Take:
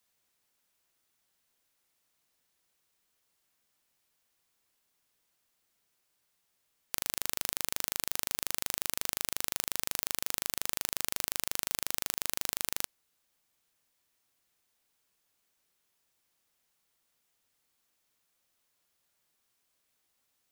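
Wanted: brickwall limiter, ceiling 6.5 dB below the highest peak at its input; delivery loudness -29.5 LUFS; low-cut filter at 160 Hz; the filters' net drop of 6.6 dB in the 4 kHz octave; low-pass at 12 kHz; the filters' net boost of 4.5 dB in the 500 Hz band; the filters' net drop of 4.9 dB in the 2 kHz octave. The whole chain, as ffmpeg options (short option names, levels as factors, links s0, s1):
-af "highpass=160,lowpass=12000,equalizer=f=500:t=o:g=6,equalizer=f=2000:t=o:g=-4.5,equalizer=f=4000:t=o:g=-7.5,volume=5.31,alimiter=limit=0.75:level=0:latency=1"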